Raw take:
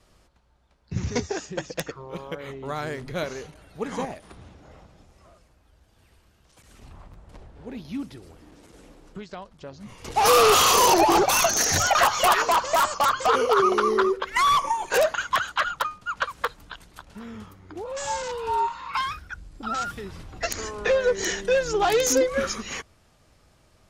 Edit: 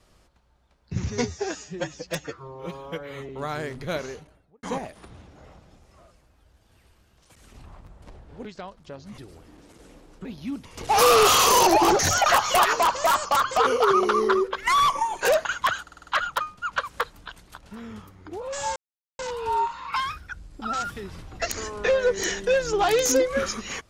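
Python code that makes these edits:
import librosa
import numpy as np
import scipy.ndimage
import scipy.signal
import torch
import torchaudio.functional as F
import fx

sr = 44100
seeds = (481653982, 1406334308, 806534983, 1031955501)

y = fx.studio_fade_out(x, sr, start_s=3.29, length_s=0.61)
y = fx.edit(y, sr, fx.stretch_span(start_s=1.1, length_s=1.46, factor=1.5),
    fx.swap(start_s=7.72, length_s=0.4, other_s=9.19, other_length_s=0.73),
    fx.cut(start_s=11.26, length_s=0.42),
    fx.stutter(start_s=15.51, slice_s=0.05, count=6),
    fx.insert_silence(at_s=18.2, length_s=0.43), tone=tone)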